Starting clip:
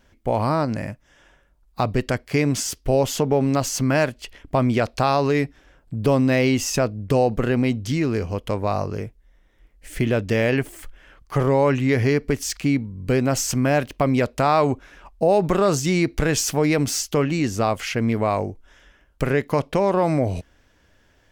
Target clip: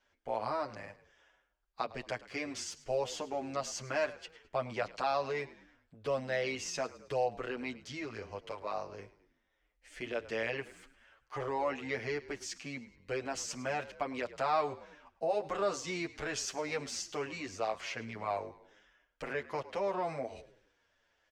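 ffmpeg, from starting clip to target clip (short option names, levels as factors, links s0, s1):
-filter_complex "[0:a]acrossover=split=450 7600:gain=0.178 1 0.0708[s0][s1][s2];[s0][s1][s2]amix=inputs=3:normalize=0,asplit=2[s3][s4];[s4]asplit=4[s5][s6][s7][s8];[s5]adelay=106,afreqshift=-46,volume=0.133[s9];[s6]adelay=212,afreqshift=-92,volume=0.0617[s10];[s7]adelay=318,afreqshift=-138,volume=0.0282[s11];[s8]adelay=424,afreqshift=-184,volume=0.013[s12];[s9][s10][s11][s12]amix=inputs=4:normalize=0[s13];[s3][s13]amix=inputs=2:normalize=0,asplit=2[s14][s15];[s15]adelay=8.1,afreqshift=-1.2[s16];[s14][s16]amix=inputs=2:normalize=1,volume=0.376"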